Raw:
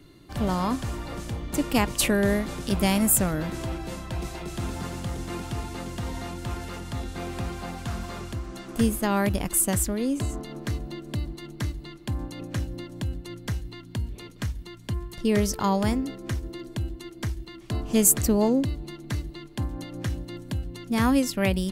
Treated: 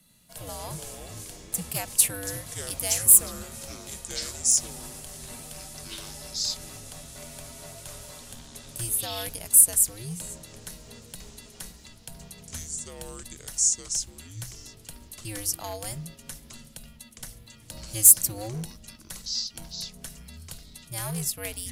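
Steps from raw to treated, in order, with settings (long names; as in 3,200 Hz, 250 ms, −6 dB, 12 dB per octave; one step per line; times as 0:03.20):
frequency shifter −110 Hz
graphic EQ with 15 bands 160 Hz +11 dB, 630 Hz +10 dB, 10,000 Hz +7 dB
delay with pitch and tempo change per echo 93 ms, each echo −6 semitones, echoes 3, each echo −6 dB
in parallel at −6 dB: wave folding −11 dBFS
on the sum: first-order pre-emphasis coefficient 0.9
mains-hum notches 50/100 Hz
on a send at −22.5 dB: convolution reverb RT60 0.45 s, pre-delay 3 ms
on the sum: level −2.5 dB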